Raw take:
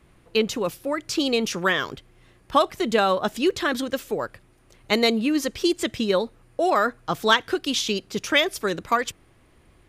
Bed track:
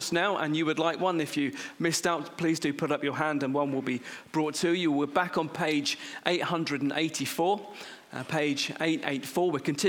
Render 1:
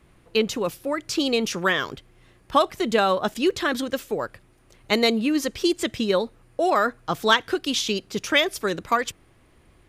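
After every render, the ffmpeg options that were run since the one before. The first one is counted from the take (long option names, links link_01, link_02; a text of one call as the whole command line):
ffmpeg -i in.wav -filter_complex "[0:a]asettb=1/sr,asplit=3[link_01][link_02][link_03];[link_01]atrim=end=3.344[link_04];[link_02]atrim=start=3.34:end=4.24,asetpts=PTS-STARTPTS,afade=type=in:duration=0.004:curve=qsin,afade=type=out:start_time=0.896:duration=0.004:curve=qsin,agate=range=-33dB:threshold=-43dB:ratio=3:release=100:detection=peak[link_05];[link_03]atrim=start=4.236[link_06];[link_04][link_05]acrossfade=duration=0.004:curve1=hsin:curve2=qsin[link_07];[link_07][link_06]acrossfade=duration=0.004:curve1=qsin:curve2=hsin" out.wav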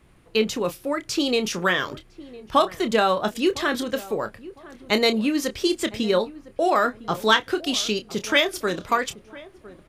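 ffmpeg -i in.wav -filter_complex "[0:a]asplit=2[link_01][link_02];[link_02]adelay=28,volume=-10dB[link_03];[link_01][link_03]amix=inputs=2:normalize=0,asplit=2[link_04][link_05];[link_05]adelay=1007,lowpass=frequency=970:poles=1,volume=-17.5dB,asplit=2[link_06][link_07];[link_07]adelay=1007,lowpass=frequency=970:poles=1,volume=0.34,asplit=2[link_08][link_09];[link_09]adelay=1007,lowpass=frequency=970:poles=1,volume=0.34[link_10];[link_04][link_06][link_08][link_10]amix=inputs=4:normalize=0" out.wav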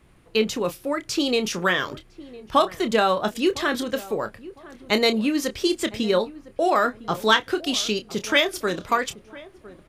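ffmpeg -i in.wav -af anull out.wav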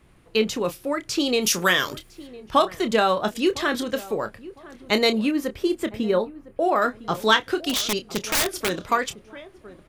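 ffmpeg -i in.wav -filter_complex "[0:a]asplit=3[link_01][link_02][link_03];[link_01]afade=type=out:start_time=1.41:duration=0.02[link_04];[link_02]aemphasis=mode=production:type=75kf,afade=type=in:start_time=1.41:duration=0.02,afade=type=out:start_time=2.26:duration=0.02[link_05];[link_03]afade=type=in:start_time=2.26:duration=0.02[link_06];[link_04][link_05][link_06]amix=inputs=3:normalize=0,asettb=1/sr,asplit=3[link_07][link_08][link_09];[link_07]atrim=end=5.314[link_10];[link_08]atrim=start=5.31:end=6.82,asetpts=PTS-STARTPTS,afade=type=in:duration=0.004:curve=qsin,afade=type=out:start_time=1.506:duration=0.004:curve=qsin,equalizer=frequency=5500:width=0.54:gain=-12[link_11];[link_09]atrim=start=6.816[link_12];[link_10][link_11]acrossfade=duration=0.004:curve1=hsin:curve2=qsin[link_13];[link_13][link_12]acrossfade=duration=0.004:curve1=qsin:curve2=hsin,asplit=3[link_14][link_15][link_16];[link_14]afade=type=out:start_time=7.69:duration=0.02[link_17];[link_15]aeval=exprs='(mod(5.96*val(0)+1,2)-1)/5.96':channel_layout=same,afade=type=in:start_time=7.69:duration=0.02,afade=type=out:start_time=8.82:duration=0.02[link_18];[link_16]afade=type=in:start_time=8.82:duration=0.02[link_19];[link_17][link_18][link_19]amix=inputs=3:normalize=0" out.wav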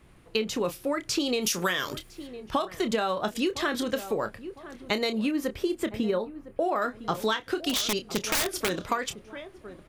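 ffmpeg -i in.wav -af "acompressor=threshold=-23dB:ratio=12" out.wav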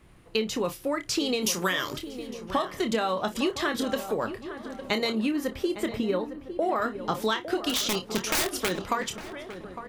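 ffmpeg -i in.wav -filter_complex "[0:a]asplit=2[link_01][link_02];[link_02]adelay=27,volume=-11dB[link_03];[link_01][link_03]amix=inputs=2:normalize=0,asplit=2[link_04][link_05];[link_05]adelay=857,lowpass=frequency=1600:poles=1,volume=-11dB,asplit=2[link_06][link_07];[link_07]adelay=857,lowpass=frequency=1600:poles=1,volume=0.42,asplit=2[link_08][link_09];[link_09]adelay=857,lowpass=frequency=1600:poles=1,volume=0.42,asplit=2[link_10][link_11];[link_11]adelay=857,lowpass=frequency=1600:poles=1,volume=0.42[link_12];[link_04][link_06][link_08][link_10][link_12]amix=inputs=5:normalize=0" out.wav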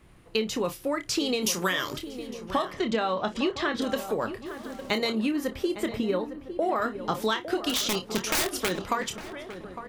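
ffmpeg -i in.wav -filter_complex "[0:a]asettb=1/sr,asplit=3[link_01][link_02][link_03];[link_01]atrim=end=2.734[link_04];[link_02]atrim=start=2.73:end=3.82,asetpts=PTS-STARTPTS,afade=type=in:duration=0.004:curve=qsin,afade=type=out:start_time=1.086:duration=0.004:curve=qsin,lowpass=4900[link_05];[link_03]atrim=start=3.816[link_06];[link_04][link_05]acrossfade=duration=0.004:curve1=hsin:curve2=qsin[link_07];[link_07][link_06]acrossfade=duration=0.004:curve1=qsin:curve2=hsin,asplit=3[link_08][link_09][link_10];[link_08]afade=type=out:start_time=4.45:duration=0.02[link_11];[link_09]acrusher=bits=7:mix=0:aa=0.5,afade=type=in:start_time=4.45:duration=0.02,afade=type=out:start_time=4.97:duration=0.02[link_12];[link_10]afade=type=in:start_time=4.97:duration=0.02[link_13];[link_11][link_12][link_13]amix=inputs=3:normalize=0" out.wav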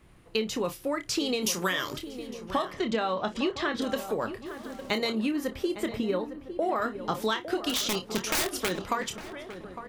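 ffmpeg -i in.wav -af "volume=-1.5dB" out.wav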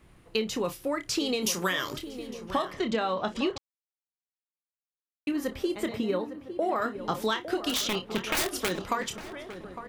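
ffmpeg -i in.wav -filter_complex "[0:a]asettb=1/sr,asplit=3[link_01][link_02][link_03];[link_01]atrim=end=5.904[link_04];[link_02]atrim=start=5.9:end=6.97,asetpts=PTS-STARTPTS,afade=type=in:duration=0.004:curve=qsin,afade=type=out:start_time=1.066:duration=0.004:curve=qsin,highpass=81[link_05];[link_03]atrim=start=6.966[link_06];[link_04][link_05]acrossfade=duration=0.004:curve1=hsin:curve2=qsin[link_07];[link_07][link_06]acrossfade=duration=0.004:curve1=qsin:curve2=hsin,asettb=1/sr,asplit=3[link_08][link_09][link_10];[link_08]atrim=end=7.874[link_11];[link_09]atrim=start=7.87:end=8.37,asetpts=PTS-STARTPTS,afade=type=in:duration=0.004:curve=qsin,afade=type=out:start_time=0.496:duration=0.004:curve=qsin,highshelf=frequency=4100:width_type=q:width=1.5:gain=-7.5[link_12];[link_10]atrim=start=8.366[link_13];[link_11][link_12]acrossfade=duration=0.004:curve1=hsin:curve2=qsin[link_14];[link_14][link_13]acrossfade=duration=0.004:curve1=qsin:curve2=hsin,asplit=3[link_15][link_16][link_17];[link_15]atrim=end=3.58,asetpts=PTS-STARTPTS,afade=type=out:start_time=3.576:duration=0.004:curve=hsin[link_18];[link_16]atrim=start=3.58:end=5.27,asetpts=PTS-STARTPTS,volume=0[link_19];[link_17]atrim=start=5.27,asetpts=PTS-STARTPTS,afade=type=in:duration=0.004:curve=hsin[link_20];[link_18][link_19][link_20]concat=n=3:v=0:a=1" out.wav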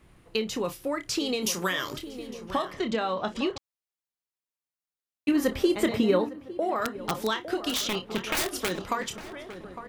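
ffmpeg -i in.wav -filter_complex "[0:a]asettb=1/sr,asplit=3[link_01][link_02][link_03];[link_01]atrim=end=5.284[link_04];[link_02]atrim=start=5.28:end=6.29,asetpts=PTS-STARTPTS,afade=type=in:duration=0.004:curve=qsin,afade=type=out:start_time=1.006:duration=0.004:curve=qsin,acontrast=58[link_05];[link_03]atrim=start=6.286[link_06];[link_04][link_05]acrossfade=duration=0.004:curve1=hsin:curve2=qsin[link_07];[link_07][link_06]acrossfade=duration=0.004:curve1=qsin:curve2=hsin,asplit=3[link_08][link_09][link_10];[link_08]afade=type=out:start_time=6.82:duration=0.02[link_11];[link_09]aeval=exprs='(mod(7.94*val(0)+1,2)-1)/7.94':channel_layout=same,afade=type=in:start_time=6.82:duration=0.02,afade=type=out:start_time=7.26:duration=0.02[link_12];[link_10]afade=type=in:start_time=7.26:duration=0.02[link_13];[link_11][link_12][link_13]amix=inputs=3:normalize=0" out.wav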